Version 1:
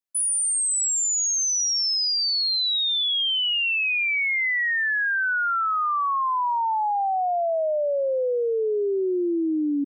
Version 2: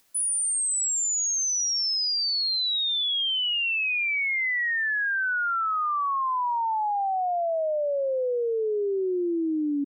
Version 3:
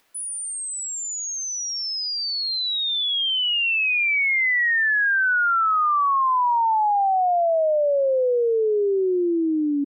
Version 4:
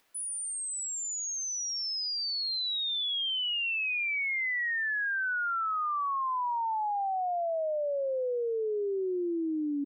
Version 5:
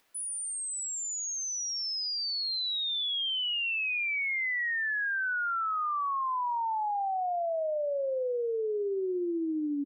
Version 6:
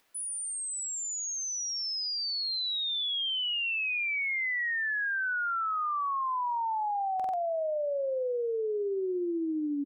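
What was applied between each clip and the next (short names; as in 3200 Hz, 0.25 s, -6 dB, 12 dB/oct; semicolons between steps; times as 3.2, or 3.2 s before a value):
upward compressor, threshold -39 dBFS; gain -2.5 dB
tone controls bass -7 dB, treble -11 dB; gain +6.5 dB
compressor, threshold -24 dBFS, peak gain reduction 5.5 dB; gain -5.5 dB
echo 0.117 s -20 dB
stuck buffer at 7.15, samples 2048, times 3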